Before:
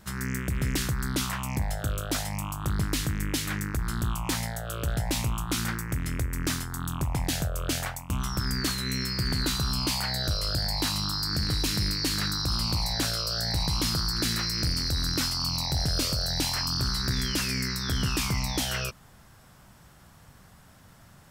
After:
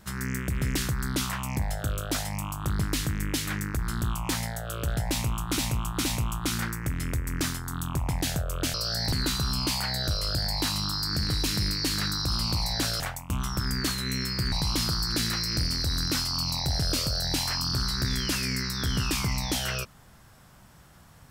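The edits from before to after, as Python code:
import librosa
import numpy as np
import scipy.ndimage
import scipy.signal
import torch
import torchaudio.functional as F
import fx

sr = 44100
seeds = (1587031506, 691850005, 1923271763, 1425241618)

y = fx.edit(x, sr, fx.repeat(start_s=5.11, length_s=0.47, count=3),
    fx.swap(start_s=7.8, length_s=1.52, other_s=13.2, other_length_s=0.38), tone=tone)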